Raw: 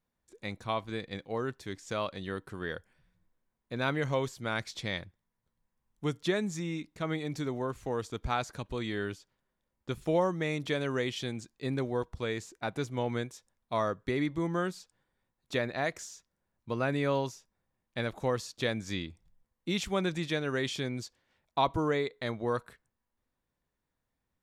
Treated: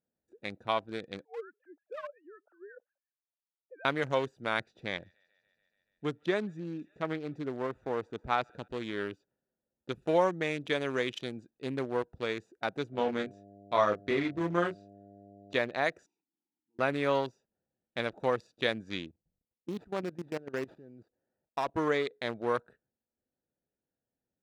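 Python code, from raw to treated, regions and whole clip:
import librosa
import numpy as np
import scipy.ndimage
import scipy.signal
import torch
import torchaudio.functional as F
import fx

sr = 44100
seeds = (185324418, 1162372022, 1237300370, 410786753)

y = fx.chain(x, sr, fx.sine_speech(),
    fx.low_shelf(hz=360.0, db=-5.5),
    fx.wah_lfo(hz=5.6, low_hz=530.0, high_hz=1500.0, q=2.2), at=(1.25, 3.85))
y = fx.chain(y, sr, fx.high_shelf(hz=3500.0, db=-8.0),
    fx.echo_wet_highpass(ms=143, feedback_pct=78, hz=1800.0, wet_db=-14.0), at=(4.61, 8.68))
y = fx.lowpass(y, sr, hz=6700.0, slope=12, at=(12.92, 15.54), fade=0.02)
y = fx.dmg_buzz(y, sr, base_hz=100.0, harmonics=7, level_db=-50.0, tilt_db=0, odd_only=False, at=(12.92, 15.54), fade=0.02)
y = fx.doubler(y, sr, ms=29.0, db=-3.5, at=(12.92, 15.54), fade=0.02)
y = fx.chain(y, sr, fx.over_compress(threshold_db=-41.0, ratio=-1.0),
    fx.auto_swell(attack_ms=437.0),
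    fx.vowel_filter(vowel='u'), at=(16.06, 16.79))
y = fx.chain(y, sr, fx.median_filter(points=15),
    fx.notch(hz=1400.0, q=23.0),
    fx.level_steps(step_db=16), at=(19.08, 21.76))
y = fx.wiener(y, sr, points=41)
y = fx.highpass(y, sr, hz=500.0, slope=6)
y = fx.high_shelf(y, sr, hz=5600.0, db=-4.0)
y = F.gain(torch.from_numpy(y), 5.0).numpy()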